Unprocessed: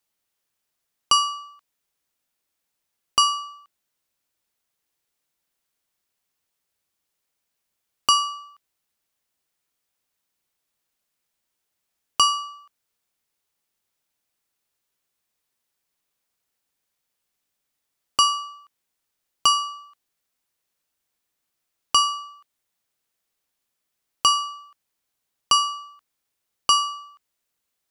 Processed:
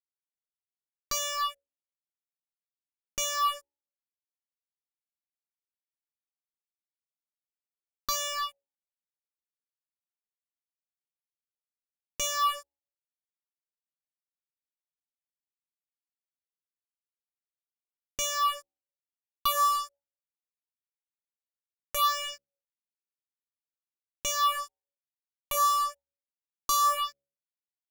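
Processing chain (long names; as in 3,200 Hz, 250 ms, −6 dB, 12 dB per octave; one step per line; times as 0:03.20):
fuzz pedal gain 43 dB, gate −45 dBFS
hum removal 70.17 Hz, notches 13
all-pass phaser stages 6, 1 Hz, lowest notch 140–1,200 Hz
level −8.5 dB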